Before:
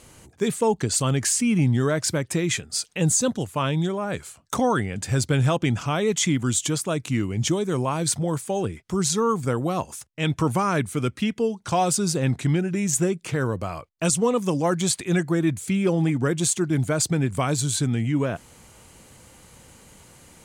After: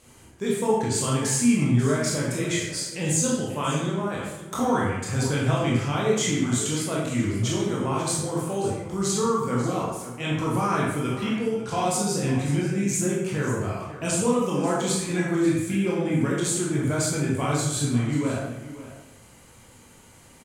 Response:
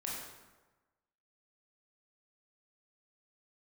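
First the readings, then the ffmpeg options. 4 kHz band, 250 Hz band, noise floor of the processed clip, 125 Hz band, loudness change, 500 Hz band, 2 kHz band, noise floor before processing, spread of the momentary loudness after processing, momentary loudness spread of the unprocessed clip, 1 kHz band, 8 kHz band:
−2.0 dB, −0.5 dB, −51 dBFS, −2.0 dB, −1.5 dB, −1.0 dB, −0.5 dB, −55 dBFS, 6 LU, 6 LU, −1.0 dB, −2.0 dB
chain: -filter_complex "[0:a]aecho=1:1:540:0.188[link_01];[1:a]atrim=start_sample=2205,asetrate=57330,aresample=44100[link_02];[link_01][link_02]afir=irnorm=-1:irlink=0"

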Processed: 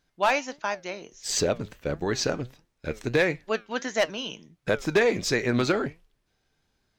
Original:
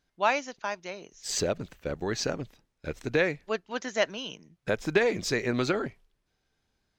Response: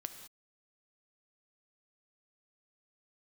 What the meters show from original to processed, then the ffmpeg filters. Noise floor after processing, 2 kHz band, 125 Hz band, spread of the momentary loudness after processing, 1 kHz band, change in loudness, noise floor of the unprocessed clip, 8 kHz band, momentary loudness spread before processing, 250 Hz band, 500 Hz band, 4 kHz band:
−74 dBFS, +3.0 dB, +3.5 dB, 12 LU, +2.5 dB, +3.0 dB, −78 dBFS, +3.5 dB, 13 LU, +3.5 dB, +3.0 dB, +3.5 dB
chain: -af "asoftclip=type=hard:threshold=-17dB,flanger=delay=5.6:depth=4.1:regen=80:speed=1.5:shape=triangular,volume=8dB"

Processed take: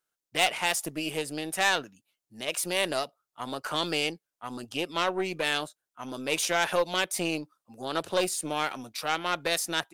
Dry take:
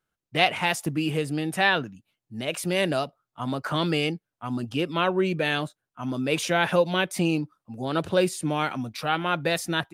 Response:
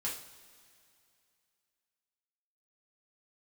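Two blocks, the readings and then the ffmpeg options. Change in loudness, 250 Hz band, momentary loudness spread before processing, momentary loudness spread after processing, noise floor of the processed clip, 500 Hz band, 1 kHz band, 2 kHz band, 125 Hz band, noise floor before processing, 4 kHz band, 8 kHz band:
−3.0 dB, −8.5 dB, 11 LU, 13 LU, below −85 dBFS, −4.5 dB, −3.0 dB, −3.0 dB, −13.5 dB, below −85 dBFS, −0.5 dB, +4.5 dB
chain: -af "aeval=exprs='(tanh(6.31*val(0)+0.7)-tanh(0.7))/6.31':channel_layout=same,bass=frequency=250:gain=-13,treble=frequency=4000:gain=8"

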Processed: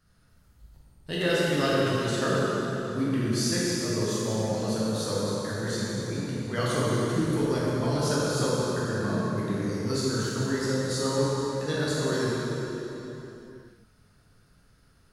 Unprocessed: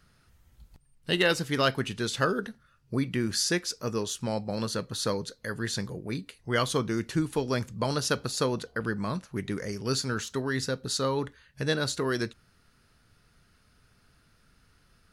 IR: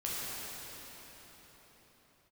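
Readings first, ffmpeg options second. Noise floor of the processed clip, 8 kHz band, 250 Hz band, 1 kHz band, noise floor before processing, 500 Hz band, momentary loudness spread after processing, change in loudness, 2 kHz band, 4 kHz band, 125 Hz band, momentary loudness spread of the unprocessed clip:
−61 dBFS, +1.0 dB, +4.0 dB, +1.0 dB, −64 dBFS, +3.5 dB, 6 LU, +2.0 dB, −0.5 dB, −1.0 dB, +4.5 dB, 8 LU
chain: -filter_complex "[0:a]equalizer=frequency=2500:width_type=o:width=1.6:gain=-5[link_01];[1:a]atrim=start_sample=2205,asetrate=61740,aresample=44100[link_02];[link_01][link_02]afir=irnorm=-1:irlink=0"

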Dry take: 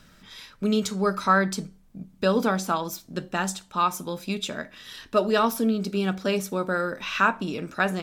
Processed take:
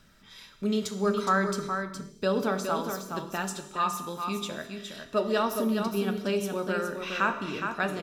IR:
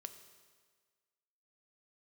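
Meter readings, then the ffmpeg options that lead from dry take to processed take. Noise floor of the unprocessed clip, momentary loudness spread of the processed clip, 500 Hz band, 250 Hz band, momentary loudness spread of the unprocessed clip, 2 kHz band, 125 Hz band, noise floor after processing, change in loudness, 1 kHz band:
−56 dBFS, 8 LU, −2.5 dB, −3.5 dB, 14 LU, −4.5 dB, −4.5 dB, −55 dBFS, −4.0 dB, −4.0 dB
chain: -filter_complex "[0:a]aecho=1:1:415:0.473[link_01];[1:a]atrim=start_sample=2205,afade=type=out:start_time=0.32:duration=0.01,atrim=end_sample=14553[link_02];[link_01][link_02]afir=irnorm=-1:irlink=0"

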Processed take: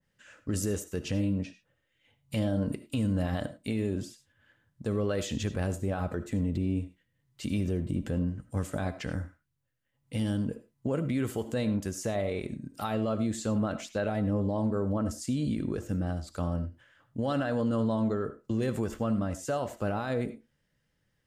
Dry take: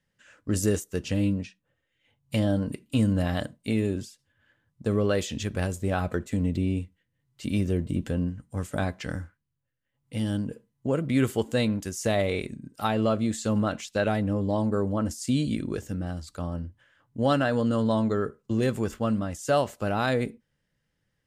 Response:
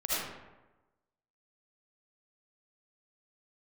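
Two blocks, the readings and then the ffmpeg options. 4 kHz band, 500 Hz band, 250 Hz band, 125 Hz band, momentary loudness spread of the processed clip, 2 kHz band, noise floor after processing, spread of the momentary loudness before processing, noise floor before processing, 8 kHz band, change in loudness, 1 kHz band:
−6.5 dB, −4.5 dB, −3.5 dB, −3.0 dB, 7 LU, −6.5 dB, −77 dBFS, 10 LU, −78 dBFS, −4.0 dB, −4.0 dB, −6.0 dB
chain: -filter_complex "[0:a]alimiter=limit=-22.5dB:level=0:latency=1:release=71,asplit=2[link_01][link_02];[1:a]atrim=start_sample=2205,afade=type=out:start_time=0.16:duration=0.01,atrim=end_sample=7497[link_03];[link_02][link_03]afir=irnorm=-1:irlink=0,volume=-16.5dB[link_04];[link_01][link_04]amix=inputs=2:normalize=0,adynamicequalizer=threshold=0.00355:dfrequency=1700:dqfactor=0.7:tfrequency=1700:tqfactor=0.7:attack=5:release=100:ratio=0.375:range=3:mode=cutabove:tftype=highshelf"

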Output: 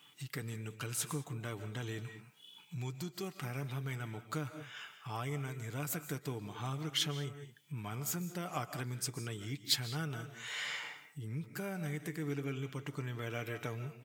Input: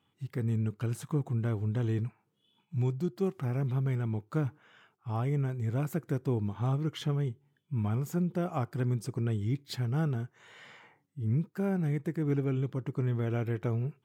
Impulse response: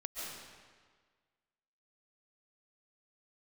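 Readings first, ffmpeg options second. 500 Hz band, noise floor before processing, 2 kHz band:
−8.0 dB, −75 dBFS, +4.0 dB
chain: -filter_complex "[0:a]asplit=2[link_01][link_02];[1:a]atrim=start_sample=2205,afade=type=out:start_time=0.27:duration=0.01,atrim=end_sample=12348[link_03];[link_02][link_03]afir=irnorm=-1:irlink=0,volume=-6.5dB[link_04];[link_01][link_04]amix=inputs=2:normalize=0,acompressor=threshold=-47dB:ratio=2,highpass=110,tiltshelf=frequency=1300:gain=-9.5,aecho=1:1:6.8:0.36,volume=8dB"

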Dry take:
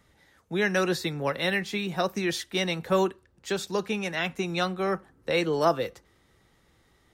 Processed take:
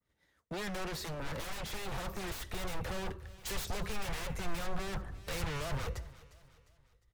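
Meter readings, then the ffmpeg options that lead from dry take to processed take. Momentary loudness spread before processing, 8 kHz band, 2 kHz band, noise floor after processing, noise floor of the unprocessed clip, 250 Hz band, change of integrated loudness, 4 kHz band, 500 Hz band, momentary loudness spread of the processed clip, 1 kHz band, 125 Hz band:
7 LU, −4.5 dB, −12.0 dB, −75 dBFS, −65 dBFS, −13.5 dB, −12.0 dB, −10.0 dB, −15.5 dB, 5 LU, −11.0 dB, −6.0 dB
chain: -filter_complex "[0:a]bandreject=frequency=810:width=12,agate=range=-33dB:threshold=-50dB:ratio=3:detection=peak,acrossover=split=220[link_01][link_02];[link_02]acompressor=threshold=-31dB:ratio=3[link_03];[link_01][link_03]amix=inputs=2:normalize=0,asoftclip=type=tanh:threshold=-32.5dB,dynaudnorm=framelen=370:gausssize=7:maxgain=6.5dB,aeval=exprs='0.0168*(abs(mod(val(0)/0.0168+3,4)-2)-1)':channel_layout=same,asubboost=boost=10:cutoff=80,aecho=1:1:354|708|1062:0.0944|0.0415|0.0183,adynamicequalizer=threshold=0.00158:dfrequency=2000:dqfactor=0.7:tfrequency=2000:tqfactor=0.7:attack=5:release=100:ratio=0.375:range=3:mode=cutabove:tftype=highshelf,volume=2dB"

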